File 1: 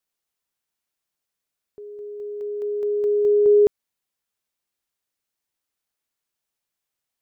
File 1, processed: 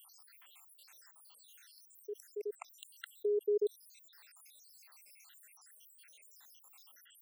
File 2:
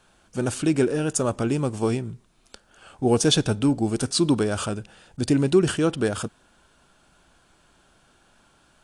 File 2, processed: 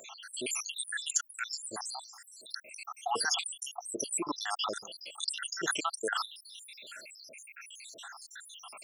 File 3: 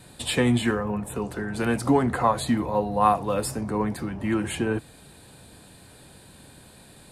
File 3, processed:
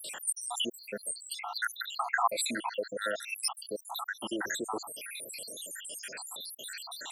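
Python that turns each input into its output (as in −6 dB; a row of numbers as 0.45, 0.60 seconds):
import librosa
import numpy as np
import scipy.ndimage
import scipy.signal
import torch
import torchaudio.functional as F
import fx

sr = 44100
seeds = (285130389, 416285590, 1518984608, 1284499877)

y = fx.spec_dropout(x, sr, seeds[0], share_pct=85)
y = scipy.signal.sosfilt(scipy.signal.butter(2, 1000.0, 'highpass', fs=sr, output='sos'), y)
y = fx.env_flatten(y, sr, amount_pct=50)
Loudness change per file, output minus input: −18.5, −11.5, −10.0 LU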